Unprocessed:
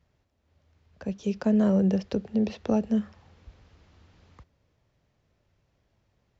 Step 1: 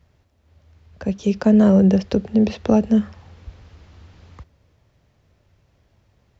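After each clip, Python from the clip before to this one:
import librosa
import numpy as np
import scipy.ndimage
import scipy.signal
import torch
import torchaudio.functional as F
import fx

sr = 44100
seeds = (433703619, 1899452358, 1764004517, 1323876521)

y = fx.peak_eq(x, sr, hz=79.0, db=5.0, octaves=0.85)
y = y * librosa.db_to_amplitude(8.5)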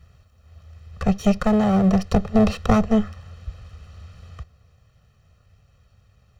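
y = fx.lower_of_two(x, sr, delay_ms=0.7)
y = y + 0.8 * np.pad(y, (int(1.6 * sr / 1000.0), 0))[:len(y)]
y = fx.rider(y, sr, range_db=10, speed_s=0.5)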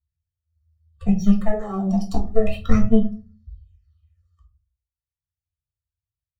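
y = fx.bin_expand(x, sr, power=2.0)
y = fx.phaser_stages(y, sr, stages=6, low_hz=120.0, high_hz=2800.0, hz=0.38, feedback_pct=30)
y = fx.room_shoebox(y, sr, seeds[0], volume_m3=160.0, walls='furnished', distance_m=1.6)
y = y * librosa.db_to_amplitude(-1.5)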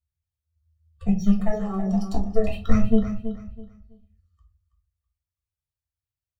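y = fx.echo_feedback(x, sr, ms=327, feedback_pct=25, wet_db=-11.0)
y = y * librosa.db_to_amplitude(-3.0)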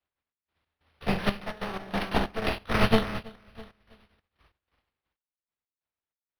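y = fx.spec_flatten(x, sr, power=0.36)
y = fx.step_gate(y, sr, bpm=93, pattern='xx.x.xxx..x.', floor_db=-12.0, edge_ms=4.5)
y = np.interp(np.arange(len(y)), np.arange(len(y))[::6], y[::6])
y = y * librosa.db_to_amplitude(-6.0)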